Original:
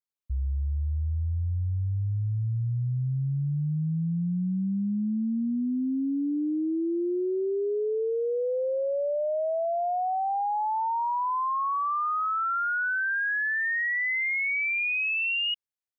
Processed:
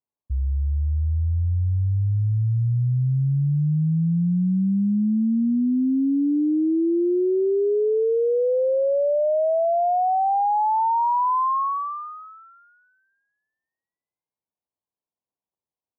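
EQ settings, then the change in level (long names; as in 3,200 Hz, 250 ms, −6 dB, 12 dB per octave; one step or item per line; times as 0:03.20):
high-pass filter 59 Hz
Butterworth low-pass 1,100 Hz 96 dB per octave
+7.0 dB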